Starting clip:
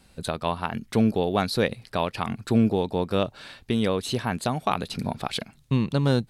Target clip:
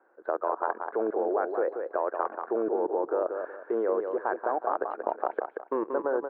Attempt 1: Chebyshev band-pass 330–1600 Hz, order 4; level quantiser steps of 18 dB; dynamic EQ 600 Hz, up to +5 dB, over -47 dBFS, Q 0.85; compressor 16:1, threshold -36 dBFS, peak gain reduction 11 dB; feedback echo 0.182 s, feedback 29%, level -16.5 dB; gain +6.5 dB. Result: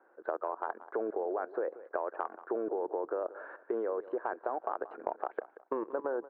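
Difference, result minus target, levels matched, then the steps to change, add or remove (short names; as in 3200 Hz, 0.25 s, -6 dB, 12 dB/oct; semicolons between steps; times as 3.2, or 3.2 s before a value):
compressor: peak gain reduction +7 dB; echo-to-direct -10.5 dB
change: compressor 16:1, threshold -28.5 dBFS, peak gain reduction 4 dB; change: feedback echo 0.182 s, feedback 29%, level -6 dB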